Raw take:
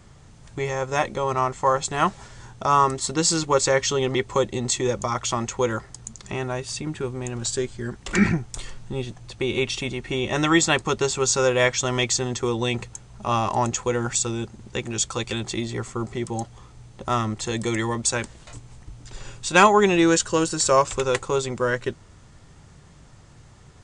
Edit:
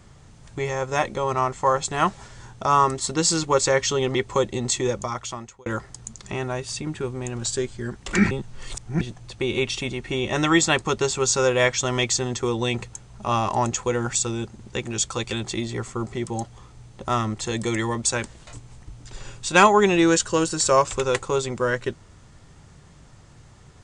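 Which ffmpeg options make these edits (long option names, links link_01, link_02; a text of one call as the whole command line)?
ffmpeg -i in.wav -filter_complex "[0:a]asplit=4[link_01][link_02][link_03][link_04];[link_01]atrim=end=5.66,asetpts=PTS-STARTPTS,afade=type=out:start_time=4.84:duration=0.82[link_05];[link_02]atrim=start=5.66:end=8.312,asetpts=PTS-STARTPTS,afade=type=in:duration=0.004:curve=hsin[link_06];[link_03]atrim=start=8.308:end=9.012,asetpts=PTS-STARTPTS,areverse[link_07];[link_04]atrim=start=9.008[link_08];[link_05][link_06]concat=n=2:v=0:a=1[link_09];[link_09][link_07]acrossfade=duration=0.004:curve1=hsin:curve2=hsin[link_10];[link_10][link_08]acrossfade=duration=0.004:curve1=hsin:curve2=hsin" out.wav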